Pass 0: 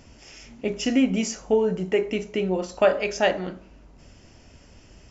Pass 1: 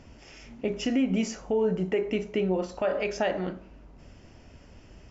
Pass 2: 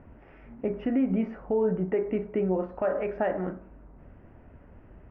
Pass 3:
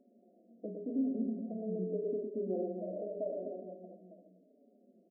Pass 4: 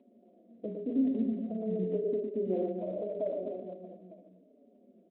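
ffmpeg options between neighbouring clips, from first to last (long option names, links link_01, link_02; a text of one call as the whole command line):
ffmpeg -i in.wav -af "lowpass=frequency=2800:poles=1,alimiter=limit=-17.5dB:level=0:latency=1:release=102" out.wav
ffmpeg -i in.wav -af "lowpass=frequency=1800:width=0.5412,lowpass=frequency=1800:width=1.3066" out.wav
ffmpeg -i in.wav -filter_complex "[0:a]afftfilt=real='re*between(b*sr/4096,180,730)':imag='im*between(b*sr/4096,180,730)':win_size=4096:overlap=0.75,asplit=2[link_01][link_02];[link_02]aecho=0:1:110|247.5|419.4|634.2|902.8:0.631|0.398|0.251|0.158|0.1[link_03];[link_01][link_03]amix=inputs=2:normalize=0,asplit=2[link_04][link_05];[link_05]adelay=4.8,afreqshift=-0.85[link_06];[link_04][link_06]amix=inputs=2:normalize=1,volume=-8dB" out.wav
ffmpeg -i in.wav -af "volume=4dB" -ar 8000 -c:a libspeex -b:a 18k out.spx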